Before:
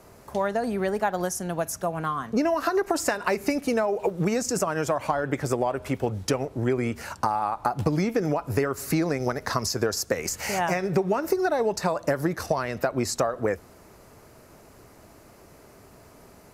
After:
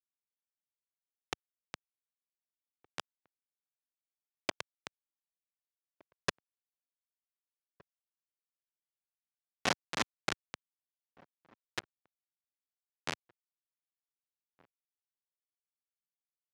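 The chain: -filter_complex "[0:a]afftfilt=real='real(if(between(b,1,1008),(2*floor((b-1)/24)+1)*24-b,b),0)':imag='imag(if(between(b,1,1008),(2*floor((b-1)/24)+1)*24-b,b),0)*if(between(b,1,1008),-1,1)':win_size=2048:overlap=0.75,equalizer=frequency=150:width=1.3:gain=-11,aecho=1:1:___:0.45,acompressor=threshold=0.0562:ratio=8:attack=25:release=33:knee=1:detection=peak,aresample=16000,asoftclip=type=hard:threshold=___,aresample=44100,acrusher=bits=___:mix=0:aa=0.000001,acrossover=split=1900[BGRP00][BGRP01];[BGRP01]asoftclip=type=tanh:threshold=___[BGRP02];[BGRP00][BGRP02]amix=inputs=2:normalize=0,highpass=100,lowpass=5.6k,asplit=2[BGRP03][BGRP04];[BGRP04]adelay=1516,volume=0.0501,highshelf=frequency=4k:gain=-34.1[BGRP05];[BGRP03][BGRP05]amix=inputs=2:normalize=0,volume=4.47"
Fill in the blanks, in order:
2.7, 0.0501, 3, 0.0251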